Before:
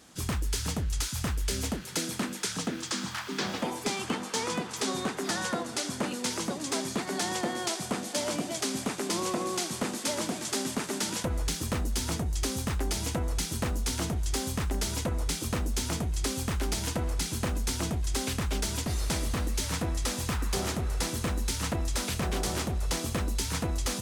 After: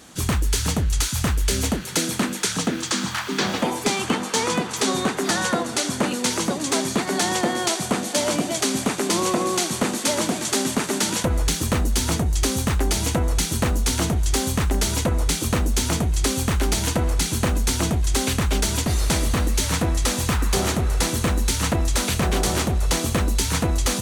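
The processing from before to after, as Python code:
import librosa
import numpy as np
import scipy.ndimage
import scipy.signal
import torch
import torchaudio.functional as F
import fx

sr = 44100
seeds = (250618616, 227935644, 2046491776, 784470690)

y = fx.notch(x, sr, hz=5100.0, q=16.0)
y = y * librosa.db_to_amplitude(9.0)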